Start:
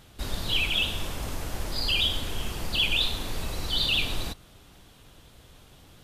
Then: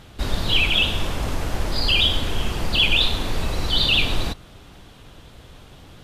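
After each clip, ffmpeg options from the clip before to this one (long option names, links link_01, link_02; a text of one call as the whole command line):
ffmpeg -i in.wav -af "lowpass=frequency=4000:poles=1,volume=8.5dB" out.wav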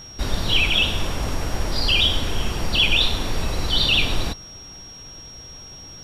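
ffmpeg -i in.wav -af "aeval=exprs='val(0)+0.0112*sin(2*PI*5600*n/s)':channel_layout=same" out.wav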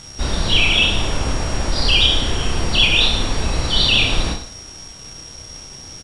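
ffmpeg -i in.wav -filter_complex "[0:a]acrusher=bits=5:mix=0:aa=0.5,asplit=2[link_01][link_02];[link_02]aecho=0:1:30|64.5|104.2|149.8|202.3:0.631|0.398|0.251|0.158|0.1[link_03];[link_01][link_03]amix=inputs=2:normalize=0,aresample=22050,aresample=44100,volume=2dB" out.wav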